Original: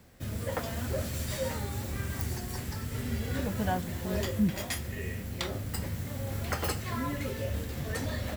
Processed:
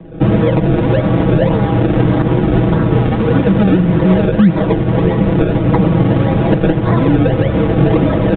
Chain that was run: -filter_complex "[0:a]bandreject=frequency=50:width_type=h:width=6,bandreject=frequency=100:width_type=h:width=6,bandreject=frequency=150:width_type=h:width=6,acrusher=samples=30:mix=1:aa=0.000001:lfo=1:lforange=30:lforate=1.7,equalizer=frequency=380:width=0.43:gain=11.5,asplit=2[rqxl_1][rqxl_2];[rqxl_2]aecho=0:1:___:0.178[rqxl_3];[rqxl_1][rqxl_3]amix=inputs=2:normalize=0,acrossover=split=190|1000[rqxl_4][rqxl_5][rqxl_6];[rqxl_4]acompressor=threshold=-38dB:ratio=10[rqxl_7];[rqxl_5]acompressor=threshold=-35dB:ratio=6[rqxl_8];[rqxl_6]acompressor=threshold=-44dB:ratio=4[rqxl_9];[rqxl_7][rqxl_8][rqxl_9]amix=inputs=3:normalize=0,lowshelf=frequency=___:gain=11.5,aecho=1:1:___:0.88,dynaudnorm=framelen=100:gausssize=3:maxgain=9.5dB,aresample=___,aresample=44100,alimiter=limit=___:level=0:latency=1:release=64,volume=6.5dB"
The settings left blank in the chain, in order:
83, 290, 6.2, 8000, -8dB